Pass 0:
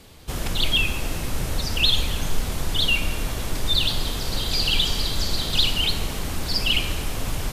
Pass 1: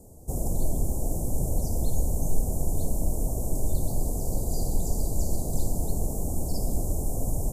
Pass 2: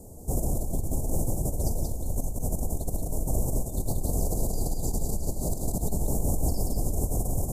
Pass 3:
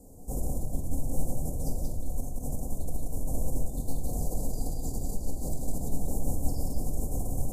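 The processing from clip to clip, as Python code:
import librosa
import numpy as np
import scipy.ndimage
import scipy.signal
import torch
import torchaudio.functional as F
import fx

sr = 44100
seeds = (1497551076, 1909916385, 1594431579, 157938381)

y1 = scipy.signal.sosfilt(scipy.signal.ellip(3, 1.0, 60, [710.0, 7300.0], 'bandstop', fs=sr, output='sos'), x)
y2 = fx.over_compress(y1, sr, threshold_db=-28.0, ratio=-1.0)
y2 = y2 + 10.0 ** (-3.5 / 20.0) * np.pad(y2, (int(181 * sr / 1000.0), 0))[:len(y2)]
y3 = fx.room_shoebox(y2, sr, seeds[0], volume_m3=820.0, walls='furnished', distance_m=2.0)
y3 = F.gain(torch.from_numpy(y3), -8.0).numpy()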